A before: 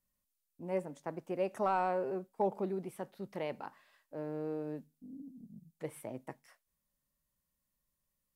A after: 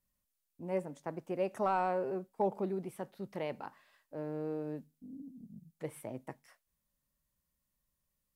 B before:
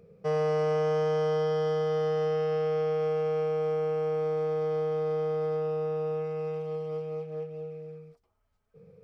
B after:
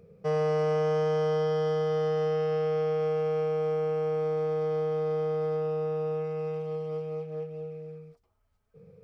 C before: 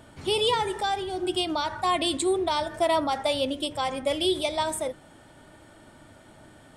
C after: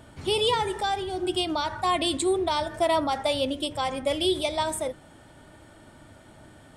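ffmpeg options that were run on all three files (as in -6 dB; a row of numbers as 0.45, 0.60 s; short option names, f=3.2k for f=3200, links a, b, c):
-af "equalizer=f=64:w=0.59:g=4"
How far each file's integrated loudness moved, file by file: 0.0, +0.5, 0.0 LU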